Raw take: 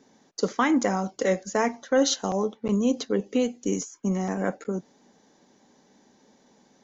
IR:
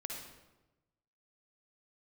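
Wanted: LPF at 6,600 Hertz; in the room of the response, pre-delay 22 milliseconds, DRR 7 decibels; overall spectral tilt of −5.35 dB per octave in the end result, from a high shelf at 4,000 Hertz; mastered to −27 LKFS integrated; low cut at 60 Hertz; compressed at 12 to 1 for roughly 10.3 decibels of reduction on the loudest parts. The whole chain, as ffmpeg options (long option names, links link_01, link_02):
-filter_complex "[0:a]highpass=60,lowpass=6600,highshelf=frequency=4000:gain=-4.5,acompressor=threshold=-28dB:ratio=12,asplit=2[link_01][link_02];[1:a]atrim=start_sample=2205,adelay=22[link_03];[link_02][link_03]afir=irnorm=-1:irlink=0,volume=-6.5dB[link_04];[link_01][link_04]amix=inputs=2:normalize=0,volume=6.5dB"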